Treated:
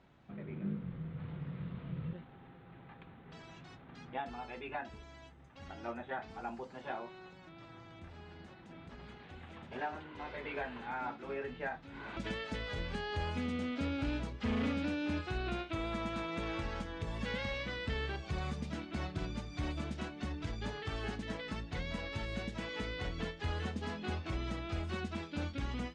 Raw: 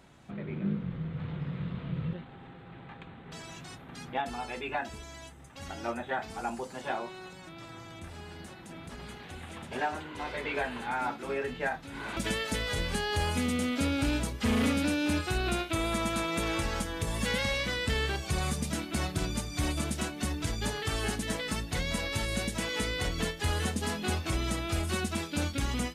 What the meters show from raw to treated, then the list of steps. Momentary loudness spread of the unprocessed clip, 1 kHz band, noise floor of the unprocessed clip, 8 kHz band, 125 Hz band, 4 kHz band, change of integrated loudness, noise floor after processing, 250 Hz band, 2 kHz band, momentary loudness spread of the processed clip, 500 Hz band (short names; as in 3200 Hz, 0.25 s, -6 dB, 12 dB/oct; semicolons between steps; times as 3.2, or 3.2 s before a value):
16 LU, -7.5 dB, -48 dBFS, -21.5 dB, -6.5 dB, -10.5 dB, -7.5 dB, -56 dBFS, -6.5 dB, -8.0 dB, 16 LU, -7.0 dB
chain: air absorption 170 m; gain -6.5 dB